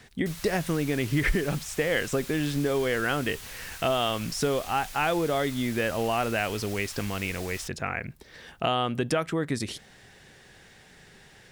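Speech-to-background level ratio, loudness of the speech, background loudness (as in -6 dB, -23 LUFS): 12.5 dB, -28.5 LUFS, -41.0 LUFS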